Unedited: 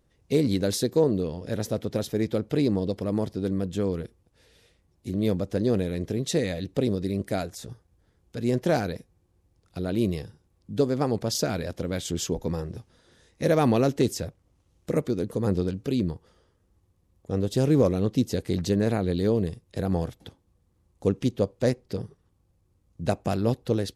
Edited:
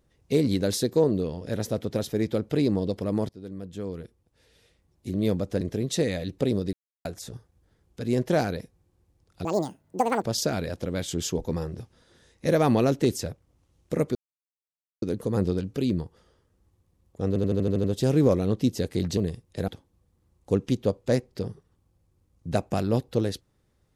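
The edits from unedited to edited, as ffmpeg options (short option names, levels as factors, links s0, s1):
-filter_complex "[0:a]asplit=17[s0][s1][s2][s3][s4][s5][s6][s7][s8][s9][s10][s11][s12][s13][s14][s15][s16];[s0]atrim=end=3.29,asetpts=PTS-STARTPTS,afade=t=out:st=3.286:d=0.004:c=hsin:silence=0.177828[s17];[s1]atrim=start=3.29:end=5.612,asetpts=PTS-STARTPTS,afade=t=in:d=1.79:silence=0.177828[s18];[s2]atrim=start=5.968:end=7.09,asetpts=PTS-STARTPTS,afade=t=out:st=1.118:d=0.004:c=hsin[s19];[s3]atrim=start=7.09:end=7.41,asetpts=PTS-STARTPTS,volume=0[s20];[s4]atrim=start=7.41:end=9.814,asetpts=PTS-STARTPTS,afade=t=in:d=0.004:c=hsin[s21];[s5]atrim=start=9.81:end=11.19,asetpts=PTS-STARTPTS,asetrate=78939,aresample=44100[s22];[s6]atrim=start=11.186:end=15.12,asetpts=PTS-STARTPTS,afade=t=out:st=3.93:d=0.004:c=hsin,apad=pad_dur=0.87[s23];[s7]atrim=start=15.12:end=17.462,asetpts=PTS-STARTPTS,afade=t=in:d=0.004:c=hsin[s24];[s8]atrim=start=17.378:end=17.462[s25];[s9]atrim=start=17.378:end=17.462[s26];[s10]atrim=start=17.378:end=17.462[s27];[s11]atrim=start=17.378:end=17.462[s28];[s12]atrim=start=17.378:end=17.462[s29];[s13]atrim=start=17.378:end=17.462[s30];[s14]atrim=start=17.378:end=18.712[s31];[s15]atrim=start=19.358:end=19.872[s32];[s16]atrim=start=20.218[s33];[s17][s18]concat=n=2:v=0:a=1[s34];[s19][s20][s21]concat=n=3:v=0:a=1[s35];[s34][s35]acrossfade=d=0.004:c1=hsin:c2=hsin[s36];[s36][s22]acrossfade=d=0.004:c1=hsin:c2=hsin[s37];[s23][s24]concat=n=2:v=0:a=1[s38];[s37][s38]acrossfade=d=0.004:c1=hsin:c2=hsin[s39];[s39][s25]acrossfade=d=0.004:c1=hsin:c2=hsin[s40];[s40][s26]acrossfade=d=0.004:c1=hsin:c2=hsin[s41];[s41][s27]acrossfade=d=0.004:c1=hsin:c2=hsin[s42];[s42][s28]acrossfade=d=0.004:c1=hsin:c2=hsin[s43];[s43][s29]acrossfade=d=0.004:c1=hsin:c2=hsin[s44];[s44][s30]acrossfade=d=0.004:c1=hsin:c2=hsin[s45];[s45][s31]acrossfade=d=0.004:c1=hsin:c2=hsin[s46];[s46][s32]acrossfade=d=0.004:c1=hsin:c2=hsin[s47];[s47][s33]acrossfade=d=0.004:c1=hsin:c2=hsin"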